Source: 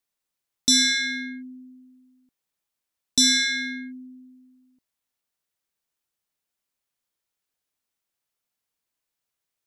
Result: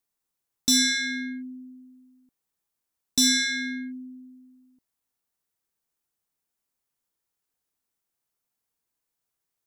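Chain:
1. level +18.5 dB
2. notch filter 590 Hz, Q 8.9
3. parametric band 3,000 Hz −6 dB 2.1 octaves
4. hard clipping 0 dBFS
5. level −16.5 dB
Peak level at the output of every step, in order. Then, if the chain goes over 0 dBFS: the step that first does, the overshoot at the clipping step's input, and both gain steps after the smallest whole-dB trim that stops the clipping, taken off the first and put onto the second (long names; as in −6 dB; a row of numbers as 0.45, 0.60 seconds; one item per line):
+6.5, +6.5, +5.5, 0.0, −16.5 dBFS
step 1, 5.5 dB
step 1 +12.5 dB, step 5 −10.5 dB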